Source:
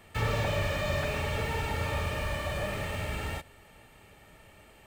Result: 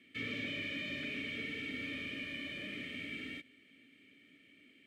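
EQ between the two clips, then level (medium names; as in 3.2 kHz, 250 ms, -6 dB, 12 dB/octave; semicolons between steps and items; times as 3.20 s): vowel filter i; high-pass 150 Hz 6 dB/octave; treble shelf 12 kHz +9.5 dB; +6.5 dB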